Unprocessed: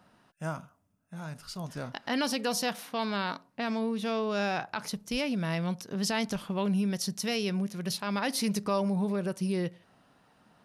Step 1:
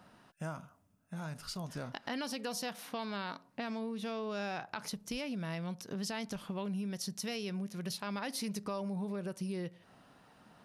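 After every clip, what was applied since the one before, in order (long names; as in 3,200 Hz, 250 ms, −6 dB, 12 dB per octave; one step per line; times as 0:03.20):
downward compressor 3 to 1, threshold −41 dBFS, peak gain reduction 12.5 dB
level +2 dB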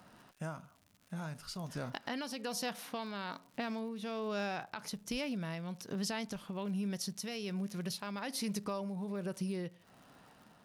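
surface crackle 140 per second −51 dBFS
shaped tremolo triangle 1.2 Hz, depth 45%
level +2 dB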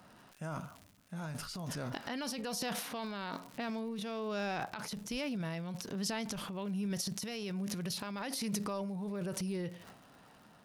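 transient designer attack −2 dB, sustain +11 dB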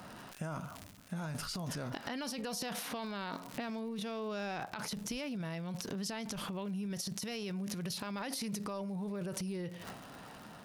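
downward compressor 6 to 1, threshold −46 dBFS, peak gain reduction 14 dB
level +9 dB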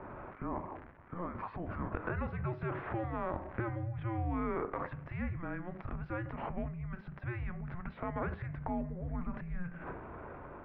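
single-sideband voice off tune −350 Hz 260–2,200 Hz
hum removal 102.2 Hz, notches 29
level +6 dB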